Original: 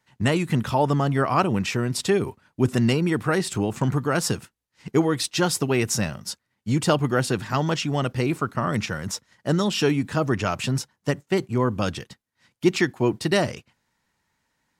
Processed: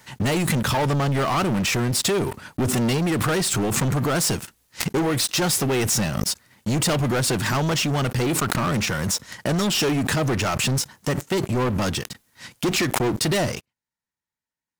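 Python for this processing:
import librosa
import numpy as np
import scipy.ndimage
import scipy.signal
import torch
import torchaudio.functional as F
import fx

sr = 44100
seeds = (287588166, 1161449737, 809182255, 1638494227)

y = fx.high_shelf(x, sr, hz=5800.0, db=7.5)
y = fx.leveller(y, sr, passes=5)
y = fx.pre_swell(y, sr, db_per_s=29.0)
y = y * librosa.db_to_amplitude(-11.5)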